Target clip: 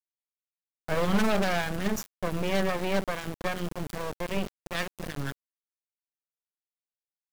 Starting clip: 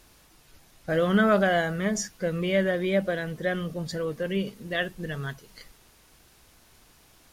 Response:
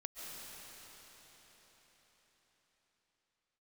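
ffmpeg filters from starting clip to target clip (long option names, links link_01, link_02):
-af "aeval=exprs='0.15*(abs(mod(val(0)/0.15+3,4)-2)-1)':channel_layout=same,lowshelf=frequency=180:gain=10.5,aeval=exprs='0.316*(cos(1*acos(clip(val(0)/0.316,-1,1)))-cos(1*PI/2))+0.00708*(cos(4*acos(clip(val(0)/0.316,-1,1)))-cos(4*PI/2))+0.0794*(cos(6*acos(clip(val(0)/0.316,-1,1)))-cos(6*PI/2))':channel_layout=same,aeval=exprs='val(0)*gte(abs(val(0)),0.0596)':channel_layout=same,volume=-6.5dB"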